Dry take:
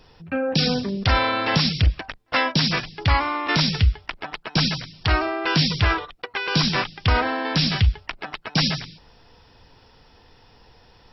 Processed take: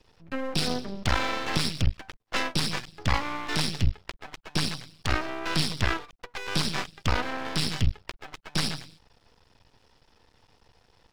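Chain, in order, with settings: Chebyshev shaper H 7 -29 dB, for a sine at -7 dBFS; half-wave rectifier; trim -2.5 dB

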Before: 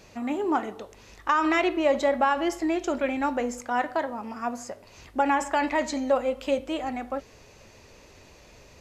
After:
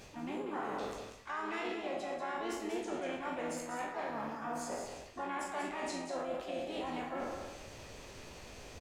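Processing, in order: spectral sustain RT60 0.64 s; reverse; compression 8:1, threshold -36 dBFS, peak gain reduction 19.5 dB; reverse; flange 0.55 Hz, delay 9 ms, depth 8.3 ms, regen -79%; de-hum 318.9 Hz, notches 26; harmony voices -7 st -10 dB, +4 st -8 dB, +5 st -9 dB; on a send: delay 190 ms -7 dB; on the sum: trim +2 dB

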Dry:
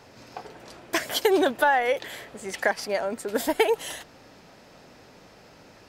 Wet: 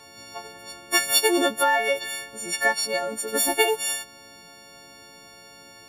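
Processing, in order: partials quantised in pitch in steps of 4 st; trim -1.5 dB

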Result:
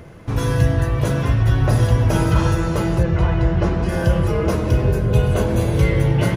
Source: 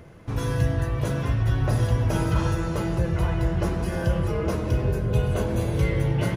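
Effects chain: 3.03–3.89 s: distance through air 96 m; trim +6.5 dB

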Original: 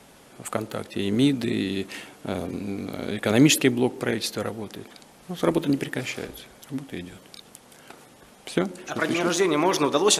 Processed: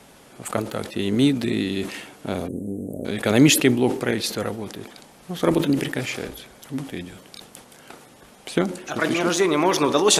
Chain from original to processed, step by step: 2.48–3.05 s: elliptic band-stop 580–8400 Hz, stop band 40 dB; decay stretcher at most 110 dB/s; trim +2 dB

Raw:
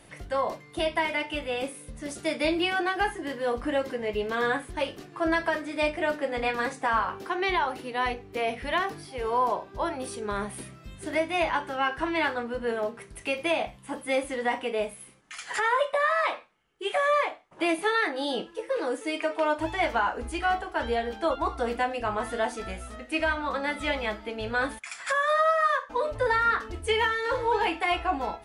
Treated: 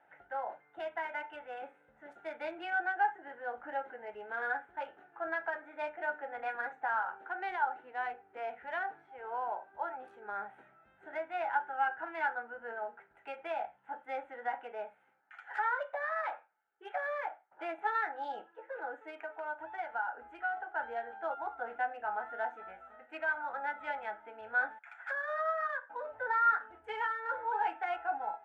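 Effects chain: local Wiener filter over 9 samples; 19.10–20.57 s: compression 2.5:1, threshold -30 dBFS, peak gain reduction 6.5 dB; two resonant band-passes 1.1 kHz, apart 0.78 oct

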